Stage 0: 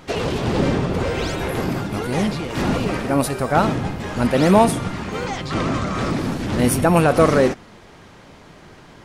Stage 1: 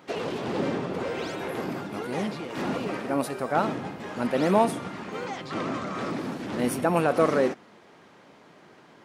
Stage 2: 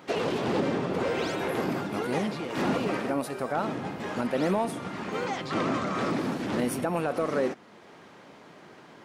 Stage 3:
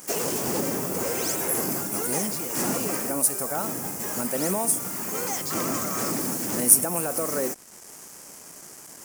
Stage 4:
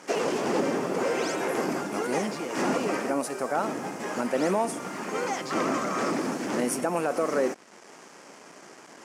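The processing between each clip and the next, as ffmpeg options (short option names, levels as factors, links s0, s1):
-af "highpass=210,equalizer=f=9700:w=0.31:g=-5.5,volume=0.473"
-filter_complex "[0:a]asplit=2[s0][s1];[s1]asoftclip=type=tanh:threshold=0.15,volume=0.376[s2];[s0][s2]amix=inputs=2:normalize=0,alimiter=limit=0.141:level=0:latency=1:release=453"
-af "acrusher=bits=7:mix=0:aa=0.5,aexciter=amount=14.3:drive=5.9:freq=5700,volume=0.841"
-af "highpass=230,lowpass=3300,volume=1.5"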